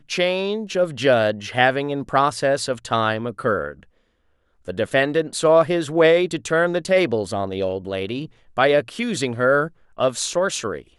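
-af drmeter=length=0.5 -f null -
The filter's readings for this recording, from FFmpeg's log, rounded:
Channel 1: DR: 10.7
Overall DR: 10.7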